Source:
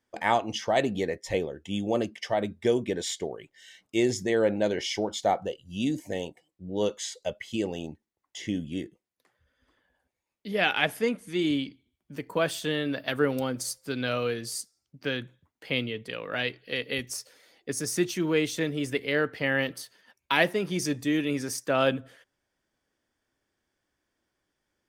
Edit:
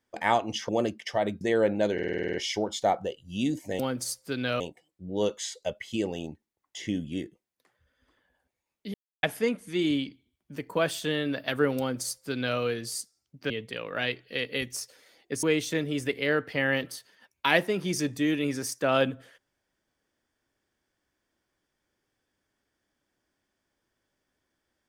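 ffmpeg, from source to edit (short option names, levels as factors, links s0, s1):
-filter_complex "[0:a]asplit=17[s0][s1][s2][s3][s4][s5][s6][s7][s8][s9][s10][s11][s12][s13][s14][s15][s16];[s0]atrim=end=0.692[s17];[s1]atrim=start=1.848:end=2.572[s18];[s2]atrim=start=4.218:end=4.802[s19];[s3]atrim=start=4.748:end=4.802[s20];[s4]atrim=start=4.748:end=4.802[s21];[s5]atrim=start=4.748:end=4.802[s22];[s6]atrim=start=4.748:end=4.802[s23];[s7]atrim=start=4.748:end=4.802[s24];[s8]atrim=start=4.748:end=4.802[s25];[s9]atrim=start=4.748:end=4.802[s26];[s10]atrim=start=4.748:end=6.202[s27];[s11]atrim=start=13.378:end=14.192[s28];[s12]atrim=start=6.198:end=10.54,asetpts=PTS-STARTPTS,afade=t=out:st=4.338:d=0.004:c=hsin[s29];[s13]atrim=start=10.54:end=10.83,asetpts=PTS-STARTPTS,volume=0[s30];[s14]atrim=start=10.83:end=15.102,asetpts=PTS-STARTPTS,afade=t=in:d=0.004:c=hsin[s31];[s15]atrim=start=15.868:end=17.802[s32];[s16]atrim=start=18.288[s33];[s17][s18]acrossfade=d=0.004:c1=hsin:c2=hsin[s34];[s34][s19]acrossfade=d=0.004:c1=hsin:c2=hsin[s35];[s35][s20]acrossfade=d=0.004:c1=hsin:c2=hsin[s36];[s36][s21]acrossfade=d=0.004:c1=hsin:c2=hsin[s37];[s37][s22]acrossfade=d=0.004:c1=hsin:c2=hsin[s38];[s38][s23]acrossfade=d=0.004:c1=hsin:c2=hsin[s39];[s39][s24]acrossfade=d=0.004:c1=hsin:c2=hsin[s40];[s40][s25]acrossfade=d=0.004:c1=hsin:c2=hsin[s41];[s41][s26]acrossfade=d=0.004:c1=hsin:c2=hsin[s42];[s42][s27]acrossfade=d=0.004:c1=hsin:c2=hsin[s43];[s43][s28]acrossfade=d=0.004:c1=hsin:c2=hsin[s44];[s29][s30][s31]concat=n=3:v=0:a=1[s45];[s44][s45]acrossfade=d=0.004:c1=hsin:c2=hsin[s46];[s46][s32]acrossfade=d=0.004:c1=hsin:c2=hsin[s47];[s47][s33]acrossfade=d=0.004:c1=hsin:c2=hsin"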